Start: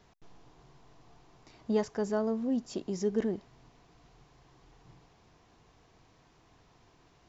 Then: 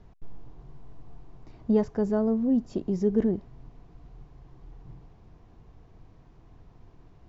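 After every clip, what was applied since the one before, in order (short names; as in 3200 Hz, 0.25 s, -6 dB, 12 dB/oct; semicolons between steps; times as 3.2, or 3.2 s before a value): tilt -3.5 dB/oct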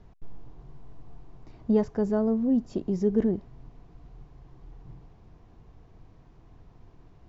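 nothing audible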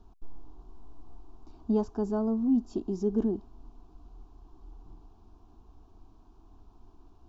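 fixed phaser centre 530 Hz, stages 6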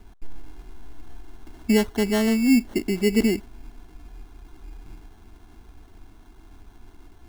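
sample-and-hold 18×; gain +7.5 dB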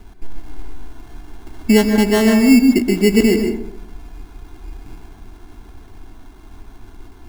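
plate-style reverb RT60 0.79 s, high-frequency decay 0.4×, pre-delay 0.115 s, DRR 4.5 dB; gain +7 dB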